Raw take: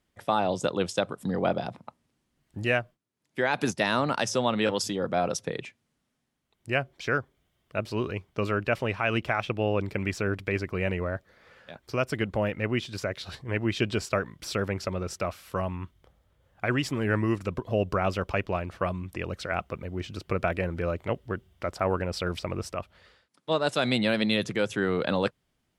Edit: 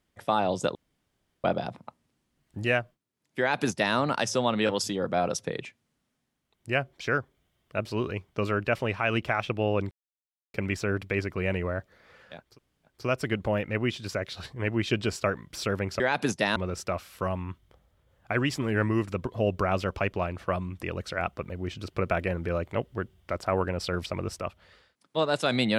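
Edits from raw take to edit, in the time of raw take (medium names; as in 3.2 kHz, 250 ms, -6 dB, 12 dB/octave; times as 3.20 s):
0.75–1.44 s: room tone
3.39–3.95 s: copy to 14.89 s
9.91 s: insert silence 0.63 s
11.84 s: insert room tone 0.48 s, crossfade 0.24 s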